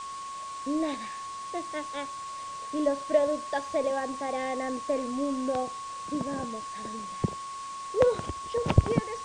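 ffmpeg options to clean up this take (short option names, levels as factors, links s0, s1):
-af "bandreject=f=1100:w=30,afwtdn=0.0056"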